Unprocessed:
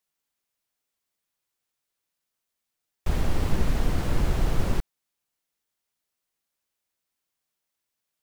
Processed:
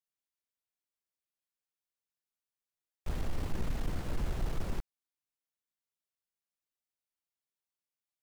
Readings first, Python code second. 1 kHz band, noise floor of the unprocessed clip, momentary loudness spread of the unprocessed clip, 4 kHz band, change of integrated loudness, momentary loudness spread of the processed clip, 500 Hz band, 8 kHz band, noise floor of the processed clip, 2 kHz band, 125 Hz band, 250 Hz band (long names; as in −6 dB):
−10.5 dB, −84 dBFS, 6 LU, −10.5 dB, −10.5 dB, 7 LU, −10.5 dB, −10.5 dB, below −85 dBFS, −10.5 dB, −10.5 dB, −10.5 dB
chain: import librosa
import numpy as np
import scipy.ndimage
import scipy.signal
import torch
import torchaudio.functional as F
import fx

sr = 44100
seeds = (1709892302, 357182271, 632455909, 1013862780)

y = 10.0 ** (-17.5 / 20.0) * np.tanh(x / 10.0 ** (-17.5 / 20.0))
y = fx.upward_expand(y, sr, threshold_db=-35.0, expansion=1.5)
y = y * 10.0 ** (-6.0 / 20.0)